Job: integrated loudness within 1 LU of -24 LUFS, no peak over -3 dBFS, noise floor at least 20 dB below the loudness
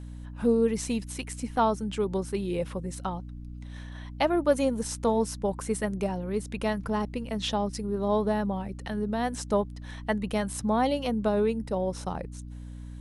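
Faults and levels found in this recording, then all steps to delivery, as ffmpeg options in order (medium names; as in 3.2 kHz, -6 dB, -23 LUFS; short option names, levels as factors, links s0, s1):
hum 60 Hz; highest harmonic 300 Hz; hum level -38 dBFS; loudness -29.0 LUFS; peak level -10.5 dBFS; loudness target -24.0 LUFS
-> -af "bandreject=f=60:t=h:w=6,bandreject=f=120:t=h:w=6,bandreject=f=180:t=h:w=6,bandreject=f=240:t=h:w=6,bandreject=f=300:t=h:w=6"
-af "volume=1.78"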